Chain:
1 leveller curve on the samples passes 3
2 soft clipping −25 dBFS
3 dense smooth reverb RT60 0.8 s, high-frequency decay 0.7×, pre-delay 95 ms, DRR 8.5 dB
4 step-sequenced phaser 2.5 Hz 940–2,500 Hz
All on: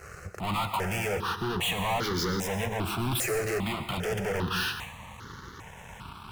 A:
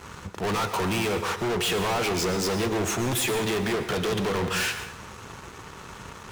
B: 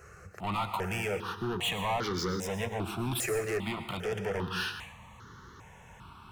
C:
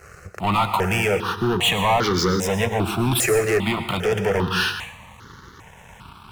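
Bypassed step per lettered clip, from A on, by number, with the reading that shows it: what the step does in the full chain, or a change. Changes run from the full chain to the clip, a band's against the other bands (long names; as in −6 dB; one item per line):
4, change in integrated loudness +3.5 LU
1, change in crest factor +1.5 dB
2, distortion level −9 dB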